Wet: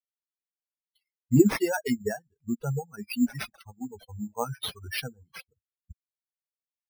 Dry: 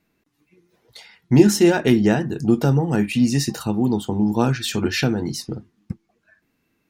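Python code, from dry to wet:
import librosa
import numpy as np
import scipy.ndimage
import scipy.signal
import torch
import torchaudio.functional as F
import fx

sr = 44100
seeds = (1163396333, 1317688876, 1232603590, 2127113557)

y = fx.bin_expand(x, sr, power=3.0)
y = fx.dereverb_blind(y, sr, rt60_s=1.7)
y = np.repeat(y[::6], 6)[:len(y)]
y = y * librosa.db_to_amplitude(-3.0)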